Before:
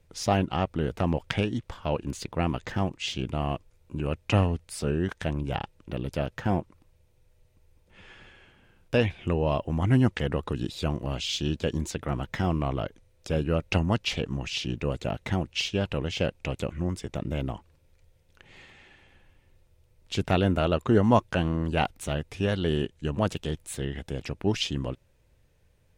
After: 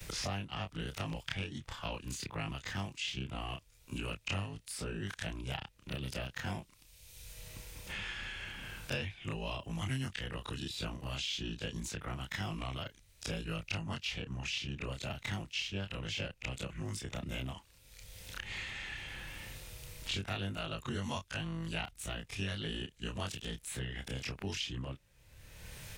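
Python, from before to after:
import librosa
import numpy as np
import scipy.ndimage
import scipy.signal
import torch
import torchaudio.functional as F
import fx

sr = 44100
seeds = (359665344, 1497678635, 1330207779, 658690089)

y = fx.frame_reverse(x, sr, frame_ms=61.0)
y = fx.tone_stack(y, sr, knobs='5-5-5')
y = fx.band_squash(y, sr, depth_pct=100)
y = F.gain(torch.from_numpy(y), 6.5).numpy()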